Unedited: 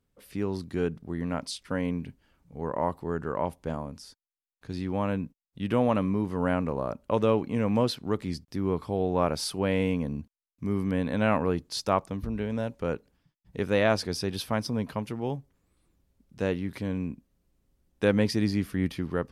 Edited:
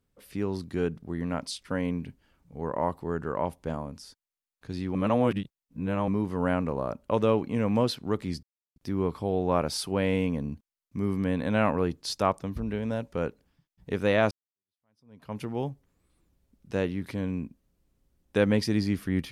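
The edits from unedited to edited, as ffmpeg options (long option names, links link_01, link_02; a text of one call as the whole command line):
ffmpeg -i in.wav -filter_complex "[0:a]asplit=5[link_01][link_02][link_03][link_04][link_05];[link_01]atrim=end=4.952[link_06];[link_02]atrim=start=4.948:end=6.082,asetpts=PTS-STARTPTS,areverse[link_07];[link_03]atrim=start=6.078:end=8.43,asetpts=PTS-STARTPTS,afade=type=out:start_time=2.348:duration=0.004:curve=hsin,apad=pad_dur=0.33[link_08];[link_04]atrim=start=8.43:end=13.98,asetpts=PTS-STARTPTS,afade=type=in:duration=0.004:curve=hsin,afade=type=out:start_time=5.546:duration=0.004:curve=hsin[link_09];[link_05]atrim=start=13.98,asetpts=PTS-STARTPTS,afade=type=in:duration=1.06:curve=exp[link_10];[link_06][link_07]acrossfade=duration=0.004:curve1=hsin:curve2=hsin[link_11];[link_08][link_09][link_10]concat=n=3:v=0:a=1[link_12];[link_11][link_12]acrossfade=duration=0.004:curve1=hsin:curve2=hsin" out.wav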